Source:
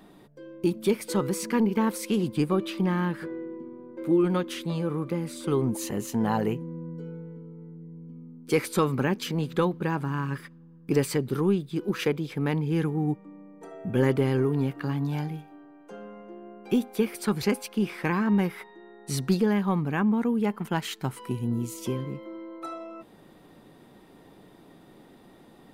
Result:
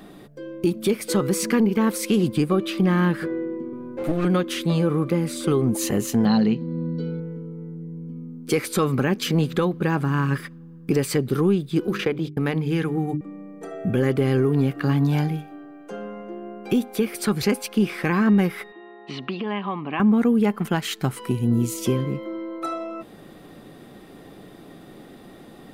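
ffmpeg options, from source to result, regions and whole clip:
-filter_complex "[0:a]asettb=1/sr,asplit=3[a][b][c];[a]atrim=end=3.724[d];[b]atrim=start=3.72:end=4.25,asetpts=PTS-STARTPTS,afade=t=in:d=0.004:c=qsin,afade=t=out:st=0.526:d=0.004:c=qsin,aecho=1:1:7.3:0.93,atrim=end_sample=23373,aeval=exprs='clip(val(0),-1,0.0178)':c=same[e];[c]atrim=start=4.246[f];[d][e]acrossfade=d=0.004:c1=hsin:c2=qsin[g];[g][f]acrossfade=d=0.004:c1=qsin:c2=hsin,asettb=1/sr,asplit=3[h][i][j];[h]atrim=end=6.254[k];[i]atrim=start=6.25:end=7.2,asetpts=PTS-STARTPTS,afade=t=in:d=0.004:c=qsin,afade=t=out:st=0.946:d=0.004:c=qsin,lowpass=f=4.2k:t=q:w=9.3,equalizer=f=220:w=5.6:g=12.5[l];[j]atrim=start=7.196[m];[k][l]acrossfade=d=0.004:c1=hsin:c2=qsin[n];[n][m]acrossfade=d=0.004:c1=qsin:c2=hsin,asettb=1/sr,asplit=3[o][p][q];[o]atrim=end=11.874[r];[p]atrim=start=11.87:end=13.21,asetpts=PTS-STARTPTS,afade=t=in:d=0.004:c=qsin,afade=t=out:st=1.336:d=0.004:c=qsin,agate=range=-51dB:threshold=-36dB:ratio=16:release=100:detection=peak,bandreject=f=50:t=h:w=6,bandreject=f=100:t=h:w=6,bandreject=f=150:t=h:w=6,bandreject=f=200:t=h:w=6,bandreject=f=250:t=h:w=6,bandreject=f=300:t=h:w=6,bandreject=f=350:t=h:w=6,bandreject=f=400:t=h:w=6,acrossover=split=1300|4600[s][t][u];[s]acompressor=threshold=-29dB:ratio=4[v];[t]acompressor=threshold=-38dB:ratio=4[w];[u]acompressor=threshold=-59dB:ratio=4[x];[v][w][x]amix=inputs=3:normalize=0[y];[q]atrim=start=13.206[z];[r][y]acrossfade=d=0.004:c1=hsin:c2=qsin[aa];[aa][z]acrossfade=d=0.004:c1=qsin:c2=hsin,asettb=1/sr,asplit=3[ab][ac][ad];[ab]atrim=end=18.724[ae];[ac]atrim=start=18.72:end=20,asetpts=PTS-STARTPTS,afade=t=in:d=0.004:c=qsin,afade=t=out:st=1.276:d=0.004:c=qsin,acompressor=threshold=-27dB:ratio=4:attack=3.2:release=140:knee=1:detection=peak,highpass=320,equalizer=f=480:t=q:w=4:g=-9,equalizer=f=1k:t=q:w=4:g=7,equalizer=f=1.5k:t=q:w=4:g=-8,equalizer=f=2.9k:t=q:w=4:g=8,lowpass=f=3.3k:w=0.5412,lowpass=f=3.3k:w=1.3066[af];[ad]atrim=start=19.996[ag];[ae][af]acrossfade=d=0.004:c1=hsin:c2=qsin[ah];[ah][ag]acrossfade=d=0.004:c1=qsin:c2=hsin,bandreject=f=930:w=7,alimiter=limit=-19.5dB:level=0:latency=1:release=294,volume=8.5dB"

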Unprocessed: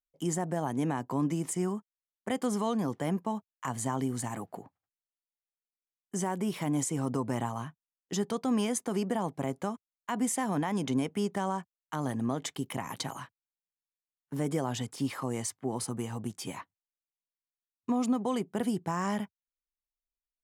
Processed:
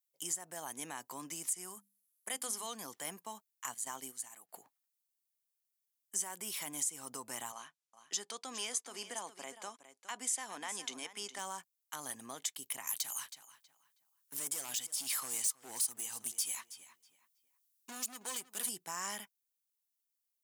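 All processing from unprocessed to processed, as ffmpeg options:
-filter_complex "[0:a]asettb=1/sr,asplit=3[a][b][c];[a]atrim=end=1.534[d];[b]atrim=start=1.53:end=2.67,asetpts=PTS-STARTPTS,afade=t=in:d=0.004:c=qsin,afade=t=out:st=1.136:d=0.004:c=qsin,acrossover=split=6700[e][f];[f]acompressor=threshold=-58dB:ratio=4:attack=1:release=60[g];[e][g]amix=inputs=2:normalize=0,equalizer=f=11k:w=1.7:g=14.5,bandreject=f=50:t=h:w=6,bandreject=f=100:t=h:w=6,bandreject=f=150:t=h:w=6,bandreject=f=200:t=h:w=6,bandreject=f=250:t=h:w=6,bandreject=f=300:t=h:w=6[h];[c]atrim=start=2.666[i];[d][h]acrossfade=d=0.004:c1=hsin:c2=qsin[j];[j][i]acrossfade=d=0.004:c1=qsin:c2=hsin,asettb=1/sr,asplit=3[k][l][m];[k]atrim=end=3.744[n];[l]atrim=start=3.74:end=4.49,asetpts=PTS-STARTPTS,afade=t=in:d=0.004:c=qsin,afade=t=out:st=0.746:d=0.004:c=qsin,highpass=f=150:p=1,agate=range=-11dB:threshold=-34dB:ratio=16:release=100:detection=peak[o];[m]atrim=start=4.486[p];[n][o]acrossfade=d=0.004:c1=hsin:c2=qsin[q];[q][p]acrossfade=d=0.004:c1=qsin:c2=hsin,asettb=1/sr,asplit=3[r][s][t];[r]atrim=end=7.524[u];[s]atrim=start=7.52:end=11.39,asetpts=PTS-STARTPTS,afade=t=in:d=0.004:c=qsin,afade=t=out:st=3.866:d=0.004:c=qsin,highpass=240,lowpass=7k,aecho=1:1:412:0.224,atrim=end_sample=170667[v];[t]atrim=start=11.386[w];[u][v]acrossfade=d=0.004:c1=hsin:c2=qsin[x];[x][w]acrossfade=d=0.004:c1=qsin:c2=hsin,asettb=1/sr,asplit=3[y][z][aa];[y]atrim=end=12.874[ab];[z]atrim=start=12.87:end=18.69,asetpts=PTS-STARTPTS,afade=t=in:d=0.004:c=qsin,afade=t=out:st=5.816:d=0.004:c=qsin,highshelf=f=2.9k:g=8.5,asoftclip=type=hard:threshold=-28.5dB,asplit=2[ac][ad];[ad]adelay=321,lowpass=f=3.8k:p=1,volume=-15dB,asplit=2[ae][af];[af]adelay=321,lowpass=f=3.8k:p=1,volume=0.28,asplit=2[ag][ah];[ah]adelay=321,lowpass=f=3.8k:p=1,volume=0.28[ai];[ac][ae][ag][ai]amix=inputs=4:normalize=0,atrim=end_sample=256662[aj];[aa]atrim=start=18.686[ak];[ab][aj]acrossfade=d=0.004:c1=hsin:c2=qsin[al];[al][ak]acrossfade=d=0.004:c1=qsin:c2=hsin,aderivative,alimiter=level_in=6.5dB:limit=-24dB:level=0:latency=1:release=254,volume=-6.5dB,volume=7.5dB"

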